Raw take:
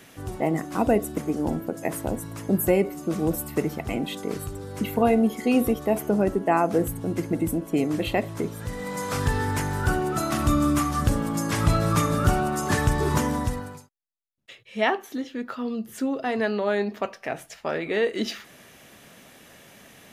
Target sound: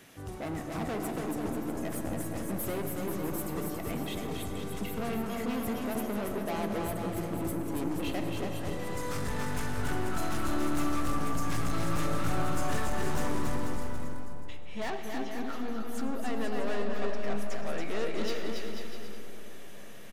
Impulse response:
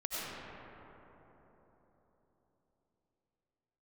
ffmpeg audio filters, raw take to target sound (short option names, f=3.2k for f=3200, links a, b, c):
-filter_complex "[0:a]aeval=exprs='(tanh(25.1*val(0)+0.15)-tanh(0.15))/25.1':c=same,aecho=1:1:280|490|647.5|765.6|854.2:0.631|0.398|0.251|0.158|0.1,asplit=2[a][b];[1:a]atrim=start_sample=2205[c];[b][c]afir=irnorm=-1:irlink=0,volume=-9.5dB[d];[a][d]amix=inputs=2:normalize=0,volume=-6.5dB"